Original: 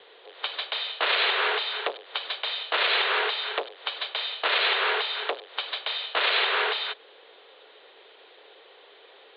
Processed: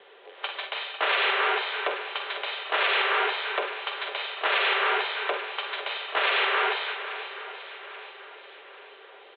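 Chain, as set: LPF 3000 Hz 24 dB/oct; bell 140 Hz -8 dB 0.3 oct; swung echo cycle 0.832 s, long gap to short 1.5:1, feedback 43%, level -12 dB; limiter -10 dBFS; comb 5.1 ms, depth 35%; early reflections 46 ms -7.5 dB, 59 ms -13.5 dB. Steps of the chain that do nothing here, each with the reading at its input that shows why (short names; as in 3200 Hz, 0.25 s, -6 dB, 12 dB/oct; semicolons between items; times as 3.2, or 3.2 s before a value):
limiter -10 dBFS: input peak -12.5 dBFS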